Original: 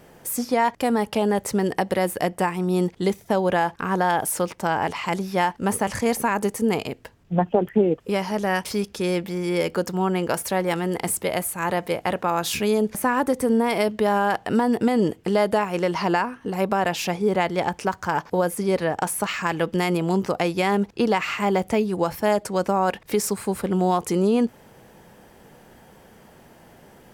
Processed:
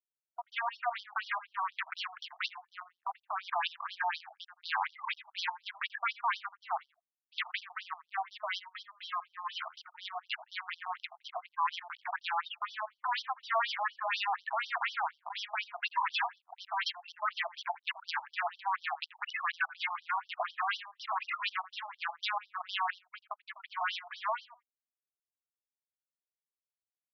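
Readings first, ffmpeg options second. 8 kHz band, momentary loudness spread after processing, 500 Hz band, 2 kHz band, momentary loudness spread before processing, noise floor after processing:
under -25 dB, 9 LU, -25.0 dB, -6.5 dB, 4 LU, under -85 dBFS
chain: -filter_complex "[0:a]acrossover=split=3300[a][b];[b]acompressor=threshold=-39dB:ratio=4:attack=1:release=60[c];[a][c]amix=inputs=2:normalize=0,afftfilt=real='re*gte(hypot(re,im),0.1)':imag='im*gte(hypot(re,im),0.1)':win_size=1024:overlap=0.75,highpass=46,aemphasis=mode=reproduction:type=50kf,bandreject=f=60:t=h:w=6,bandreject=f=120:t=h:w=6,bandreject=f=180:t=h:w=6,acrossover=split=110[d][e];[d]alimiter=level_in=20dB:limit=-24dB:level=0:latency=1:release=400,volume=-20dB[f];[f][e]amix=inputs=2:normalize=0,asoftclip=type=hard:threshold=-13dB,aphaser=in_gain=1:out_gain=1:delay=3.2:decay=0.54:speed=0.27:type=triangular,aresample=16000,aeval=exprs='0.0891*(abs(mod(val(0)/0.0891+3,4)-2)-1)':c=same,aresample=44100,aecho=1:1:84|168:0.141|0.0226,afftfilt=real='re*between(b*sr/1024,860*pow(4300/860,0.5+0.5*sin(2*PI*4.1*pts/sr))/1.41,860*pow(4300/860,0.5+0.5*sin(2*PI*4.1*pts/sr))*1.41)':imag='im*between(b*sr/1024,860*pow(4300/860,0.5+0.5*sin(2*PI*4.1*pts/sr))/1.41,860*pow(4300/860,0.5+0.5*sin(2*PI*4.1*pts/sr))*1.41)':win_size=1024:overlap=0.75"

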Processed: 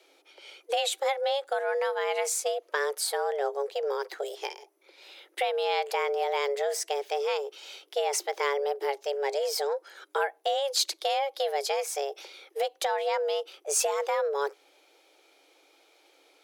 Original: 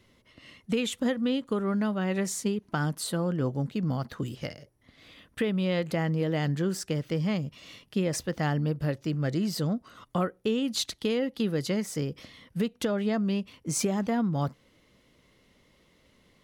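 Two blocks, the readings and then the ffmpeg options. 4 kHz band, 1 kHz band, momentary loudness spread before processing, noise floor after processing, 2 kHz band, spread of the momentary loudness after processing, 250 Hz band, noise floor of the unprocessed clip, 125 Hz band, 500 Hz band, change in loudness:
+4.0 dB, +8.5 dB, 7 LU, -63 dBFS, +3.5 dB, 9 LU, under -25 dB, -65 dBFS, under -40 dB, +4.0 dB, 0.0 dB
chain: -af "afreqshift=280,acontrast=50,tiltshelf=f=1.1k:g=-3.5,volume=-5dB"

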